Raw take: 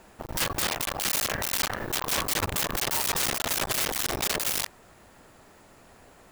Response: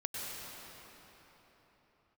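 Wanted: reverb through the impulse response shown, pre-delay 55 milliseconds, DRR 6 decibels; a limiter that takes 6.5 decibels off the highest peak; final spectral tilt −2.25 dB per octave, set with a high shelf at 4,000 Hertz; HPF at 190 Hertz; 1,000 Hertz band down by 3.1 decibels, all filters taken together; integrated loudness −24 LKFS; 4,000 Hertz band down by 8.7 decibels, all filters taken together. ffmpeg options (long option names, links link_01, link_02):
-filter_complex "[0:a]highpass=190,equalizer=frequency=1000:width_type=o:gain=-3,highshelf=frequency=4000:gain=-8.5,equalizer=frequency=4000:width_type=o:gain=-6,alimiter=level_in=1dB:limit=-24dB:level=0:latency=1,volume=-1dB,asplit=2[link_01][link_02];[1:a]atrim=start_sample=2205,adelay=55[link_03];[link_02][link_03]afir=irnorm=-1:irlink=0,volume=-9dB[link_04];[link_01][link_04]amix=inputs=2:normalize=0,volume=10dB"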